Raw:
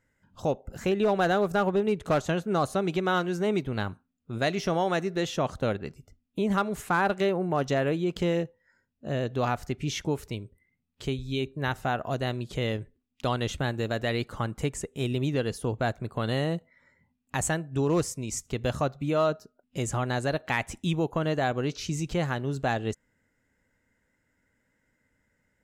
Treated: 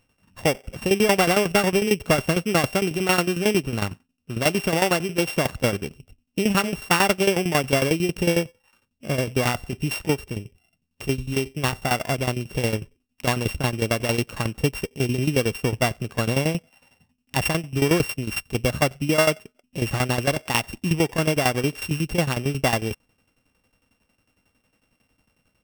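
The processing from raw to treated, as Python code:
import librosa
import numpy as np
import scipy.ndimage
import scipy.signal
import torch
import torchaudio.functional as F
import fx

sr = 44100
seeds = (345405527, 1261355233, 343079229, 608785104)

y = np.r_[np.sort(x[:len(x) // 16 * 16].reshape(-1, 16), axis=1).ravel(), x[len(x) // 16 * 16:]]
y = fx.tremolo_shape(y, sr, shape='saw_down', hz=11.0, depth_pct=80)
y = F.gain(torch.from_numpy(y), 9.0).numpy()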